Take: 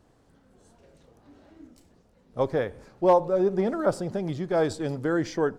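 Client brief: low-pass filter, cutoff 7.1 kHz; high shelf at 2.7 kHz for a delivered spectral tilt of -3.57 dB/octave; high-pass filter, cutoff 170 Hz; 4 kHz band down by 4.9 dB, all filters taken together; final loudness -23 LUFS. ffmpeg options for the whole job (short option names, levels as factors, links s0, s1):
-af "highpass=170,lowpass=7100,highshelf=f=2700:g=3.5,equalizer=f=4000:t=o:g=-9,volume=1.5"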